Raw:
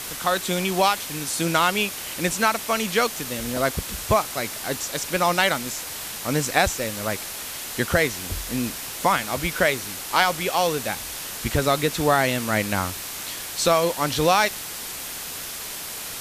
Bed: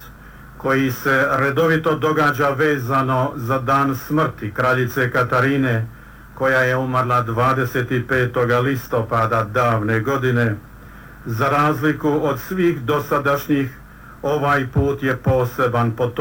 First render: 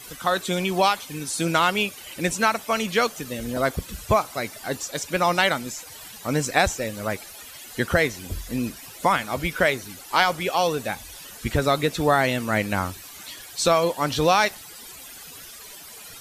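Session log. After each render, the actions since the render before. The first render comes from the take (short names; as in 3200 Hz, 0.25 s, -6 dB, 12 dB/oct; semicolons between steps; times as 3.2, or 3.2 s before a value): denoiser 14 dB, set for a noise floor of -34 dBFS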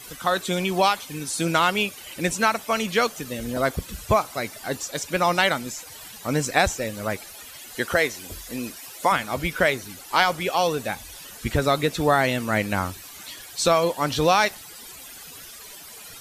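7.75–9.12 tone controls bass -10 dB, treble +2 dB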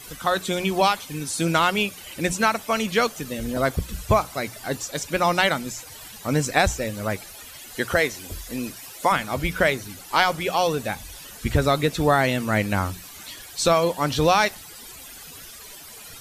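low shelf 140 Hz +7 dB; notches 60/120/180 Hz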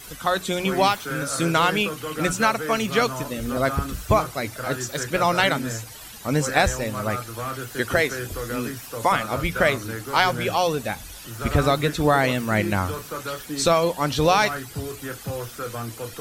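add bed -14 dB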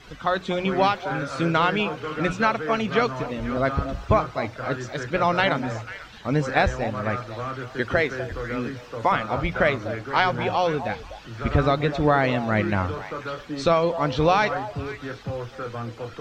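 air absorption 200 m; delay with a stepping band-pass 0.247 s, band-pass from 690 Hz, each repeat 1.4 oct, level -9.5 dB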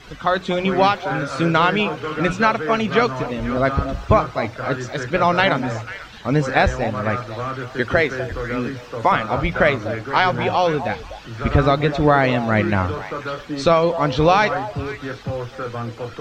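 gain +4.5 dB; limiter -2 dBFS, peak gain reduction 2 dB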